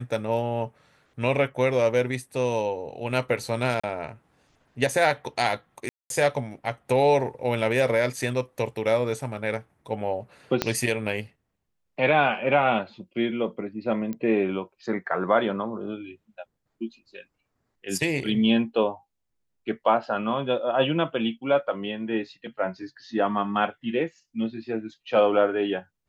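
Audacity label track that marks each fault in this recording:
3.800000	3.830000	drop-out 35 ms
5.890000	6.100000	drop-out 212 ms
10.620000	10.620000	click −7 dBFS
14.130000	14.130000	click −21 dBFS

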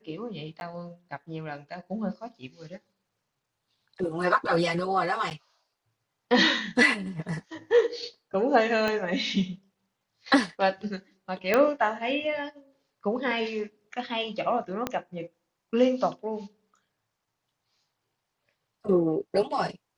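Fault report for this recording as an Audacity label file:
0.600000	0.610000	drop-out 11 ms
5.300000	5.310000	drop-out 9.3 ms
8.880000	8.880000	click −15 dBFS
11.540000	11.540000	click −9 dBFS
14.870000	14.870000	click −13 dBFS

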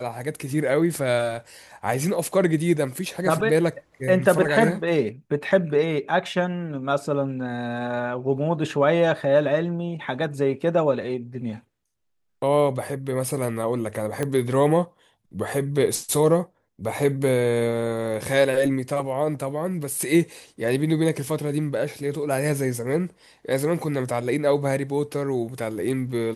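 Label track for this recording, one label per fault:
14.230000	14.230000	click −13 dBFS

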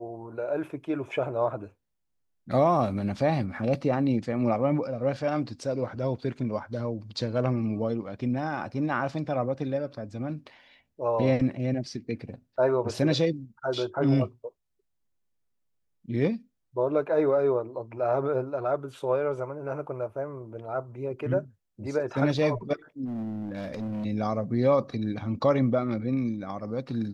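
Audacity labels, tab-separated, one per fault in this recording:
23.050000	24.060000	clipping −30 dBFS

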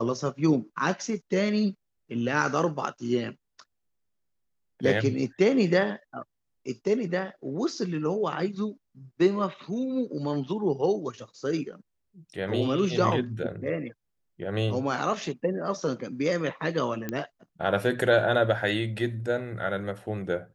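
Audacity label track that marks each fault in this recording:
17.090000	17.090000	click −17 dBFS

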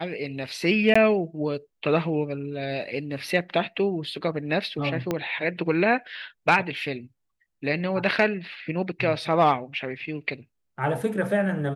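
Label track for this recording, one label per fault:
0.940000	0.950000	drop-out 15 ms
5.110000	5.110000	click −12 dBFS

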